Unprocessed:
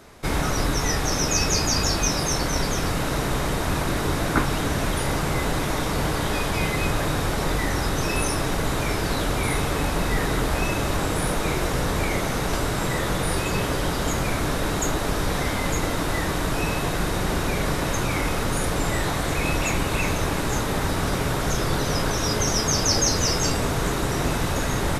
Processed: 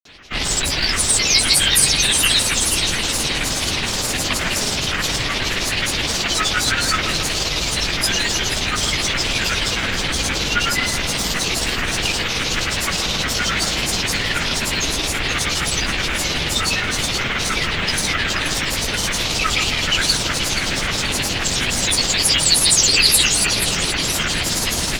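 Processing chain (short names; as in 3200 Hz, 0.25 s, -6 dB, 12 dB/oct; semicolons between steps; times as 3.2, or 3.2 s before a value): hard clip -20 dBFS, distortion -13 dB; band shelf 3800 Hz +16 dB; grains, grains 19/s, pitch spread up and down by 12 st; on a send: split-band echo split 2500 Hz, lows 0.137 s, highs 0.479 s, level -9 dB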